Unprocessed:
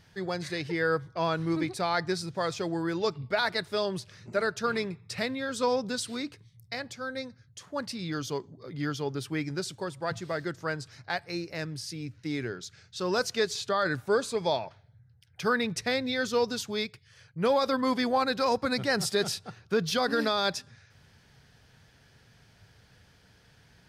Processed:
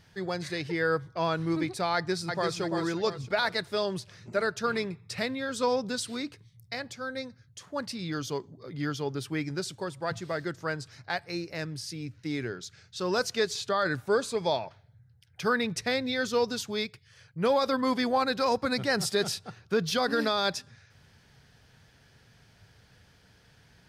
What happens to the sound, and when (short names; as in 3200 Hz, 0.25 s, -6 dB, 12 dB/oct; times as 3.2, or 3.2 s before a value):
1.94–2.6 echo throw 0.34 s, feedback 40%, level -5 dB